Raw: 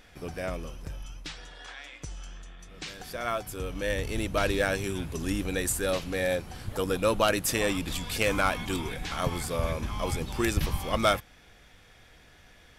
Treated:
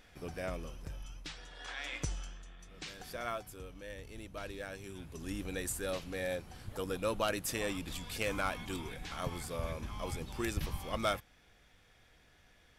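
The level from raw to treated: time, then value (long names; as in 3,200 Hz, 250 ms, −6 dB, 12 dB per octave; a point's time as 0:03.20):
0:01.49 −5.5 dB
0:01.96 +6 dB
0:02.38 −6 dB
0:03.19 −6 dB
0:03.86 −17 dB
0:04.70 −17 dB
0:05.44 −9 dB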